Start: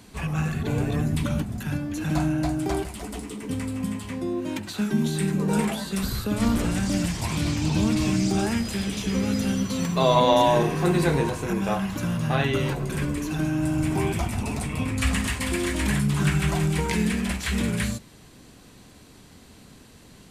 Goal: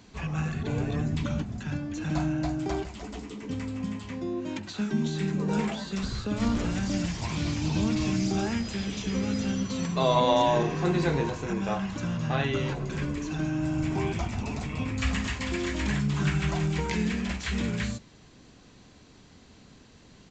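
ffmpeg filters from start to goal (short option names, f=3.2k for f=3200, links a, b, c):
-af "aresample=16000,aresample=44100,volume=-4dB"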